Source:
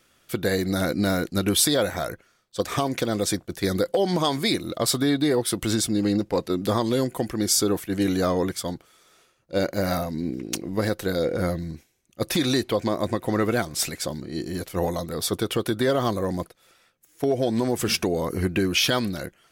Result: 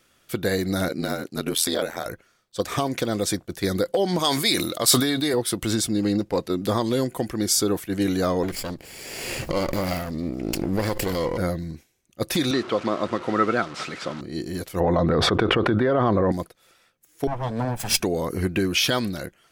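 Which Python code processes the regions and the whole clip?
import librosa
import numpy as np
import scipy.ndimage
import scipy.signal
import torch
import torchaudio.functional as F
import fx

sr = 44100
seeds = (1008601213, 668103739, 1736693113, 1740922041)

y = fx.chain(x, sr, fx.highpass(hz=200.0, slope=12),
    fx.ring_mod(carrier_hz=42.0), at=(0.88, 2.06))
y = fx.chain(y, sr, fx.tilt_eq(slope=2.0),
    fx.sustainer(db_per_s=46.0), at=(4.19, 5.34))
y = fx.chain(y, sr, fx.lower_of_two(delay_ms=0.4),
    fx.pre_swell(db_per_s=31.0), at=(8.43, 11.38))
y = fx.chain(y, sr, fx.delta_mod(bps=64000, step_db=-30.5),
    fx.bandpass_edges(low_hz=160.0, high_hz=4000.0),
    fx.peak_eq(hz=1300.0, db=11.5, octaves=0.22), at=(12.51, 14.21))
y = fx.chain(y, sr, fx.cheby1_lowpass(hz=1600.0, order=2),
    fx.env_flatten(amount_pct=100), at=(14.8, 16.32))
y = fx.chain(y, sr, fx.lower_of_two(delay_ms=1.2),
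    fx.band_widen(depth_pct=100), at=(17.27, 18.0))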